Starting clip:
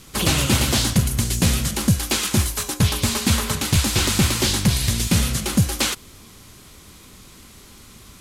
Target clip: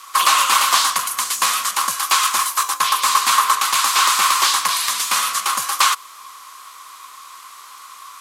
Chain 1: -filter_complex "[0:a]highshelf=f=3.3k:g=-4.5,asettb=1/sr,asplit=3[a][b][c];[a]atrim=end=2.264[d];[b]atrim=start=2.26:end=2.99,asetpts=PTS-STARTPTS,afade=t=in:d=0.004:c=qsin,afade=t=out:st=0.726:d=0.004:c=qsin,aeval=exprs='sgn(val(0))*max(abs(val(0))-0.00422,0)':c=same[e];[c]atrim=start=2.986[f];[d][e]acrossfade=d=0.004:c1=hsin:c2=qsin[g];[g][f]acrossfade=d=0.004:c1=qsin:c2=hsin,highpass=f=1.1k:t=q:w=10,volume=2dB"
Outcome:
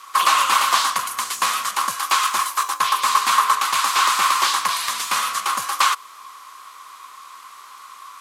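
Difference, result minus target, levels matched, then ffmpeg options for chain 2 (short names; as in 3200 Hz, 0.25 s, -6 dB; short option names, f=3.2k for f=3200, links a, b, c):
8000 Hz band -3.5 dB
-filter_complex "[0:a]highshelf=f=3.3k:g=2.5,asettb=1/sr,asplit=3[a][b][c];[a]atrim=end=2.264[d];[b]atrim=start=2.26:end=2.99,asetpts=PTS-STARTPTS,afade=t=in:d=0.004:c=qsin,afade=t=out:st=0.726:d=0.004:c=qsin,aeval=exprs='sgn(val(0))*max(abs(val(0))-0.00422,0)':c=same[e];[c]atrim=start=2.986[f];[d][e]acrossfade=d=0.004:c1=hsin:c2=qsin[g];[g][f]acrossfade=d=0.004:c1=qsin:c2=hsin,highpass=f=1.1k:t=q:w=10,volume=2dB"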